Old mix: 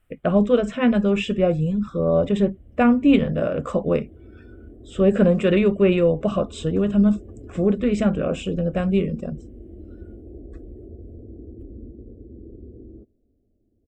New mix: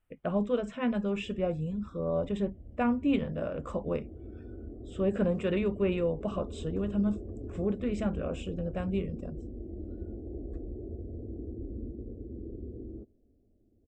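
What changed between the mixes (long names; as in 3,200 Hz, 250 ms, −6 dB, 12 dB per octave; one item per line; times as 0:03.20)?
speech −11.5 dB
master: add parametric band 920 Hz +7 dB 0.3 octaves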